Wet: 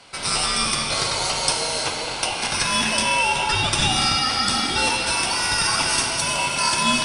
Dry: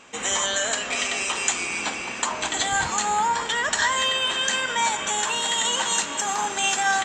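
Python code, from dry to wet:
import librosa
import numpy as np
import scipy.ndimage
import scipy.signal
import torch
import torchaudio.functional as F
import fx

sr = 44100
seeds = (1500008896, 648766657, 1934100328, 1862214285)

y = x * np.sin(2.0 * np.pi * 1800.0 * np.arange(len(x)) / sr)
y = fx.rev_gated(y, sr, seeds[0], gate_ms=370, shape='flat', drr_db=2.5)
y = y * librosa.db_to_amplitude(4.0)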